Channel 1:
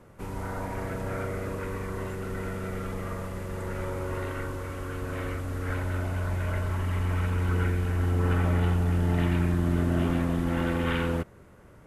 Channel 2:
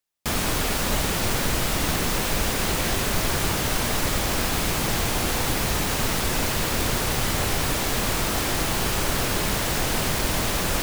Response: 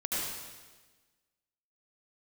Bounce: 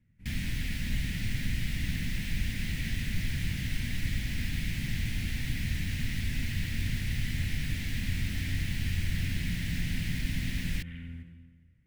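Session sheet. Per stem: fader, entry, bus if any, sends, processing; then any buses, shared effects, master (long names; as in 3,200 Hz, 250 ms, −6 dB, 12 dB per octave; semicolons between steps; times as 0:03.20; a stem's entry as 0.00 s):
−13.0 dB, 0.00 s, send −12.5 dB, no processing
−3.5 dB, 0.00 s, no send, no processing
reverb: on, RT60 1.3 s, pre-delay 68 ms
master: drawn EQ curve 130 Hz 0 dB, 250 Hz −5 dB, 400 Hz −25 dB, 1,200 Hz −29 dB, 1,900 Hz −3 dB, 7,100 Hz −16 dB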